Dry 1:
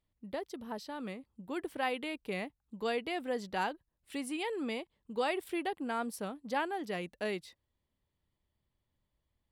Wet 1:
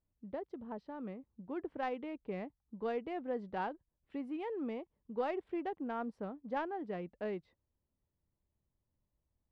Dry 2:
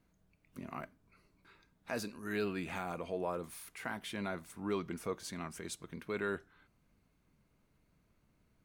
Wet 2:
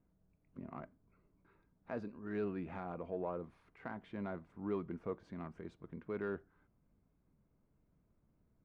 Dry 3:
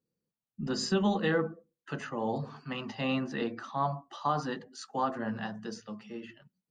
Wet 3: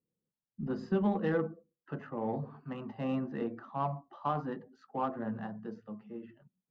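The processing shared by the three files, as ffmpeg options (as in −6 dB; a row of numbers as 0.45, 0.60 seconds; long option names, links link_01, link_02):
-af "acrusher=bits=9:mode=log:mix=0:aa=0.000001,adynamicsmooth=sensitivity=0.5:basefreq=1200,volume=-1.5dB"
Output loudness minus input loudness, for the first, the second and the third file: −3.5, −3.5, −3.0 LU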